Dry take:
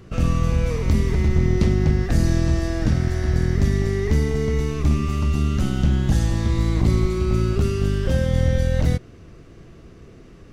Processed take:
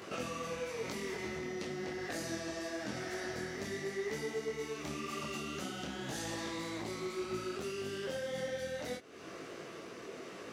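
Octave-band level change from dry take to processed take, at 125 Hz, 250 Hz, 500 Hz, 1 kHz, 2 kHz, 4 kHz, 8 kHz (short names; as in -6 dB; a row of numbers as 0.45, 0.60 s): -30.5, -18.0, -11.5, -9.0, -7.5, -7.0, -7.5 dB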